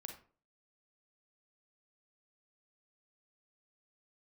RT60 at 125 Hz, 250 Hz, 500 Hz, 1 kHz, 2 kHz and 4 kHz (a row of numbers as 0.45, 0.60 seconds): 0.45, 0.45, 0.45, 0.40, 0.35, 0.25 seconds